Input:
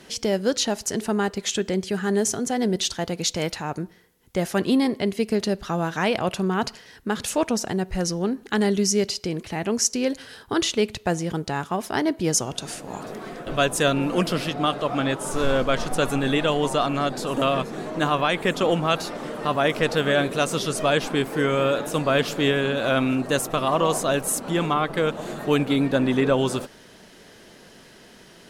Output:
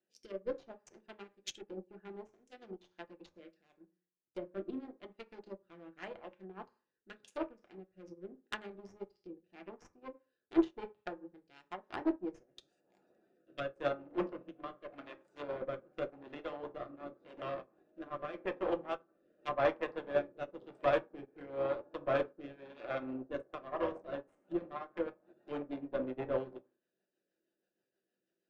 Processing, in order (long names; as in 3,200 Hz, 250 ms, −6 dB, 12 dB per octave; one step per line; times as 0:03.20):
adaptive Wiener filter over 41 samples
high-pass filter 230 Hz 12 dB per octave
harmonic generator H 2 −13 dB, 4 −13 dB, 7 −43 dB, 8 −33 dB, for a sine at −6.5 dBFS
mains-hum notches 60/120/180/240/300/360/420/480/540 Hz
rotating-speaker cabinet horn 0.9 Hz, later 6.3 Hz, at 0:23.11
convolution reverb RT60 0.45 s, pre-delay 3 ms, DRR 2.5 dB
treble cut that deepens with the level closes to 900 Hz, closed at −25 dBFS
tilt shelving filter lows −8.5 dB, about 1,200 Hz
soft clipping −19 dBFS, distortion −22 dB
expander for the loud parts 2.5 to 1, over −44 dBFS
level +3 dB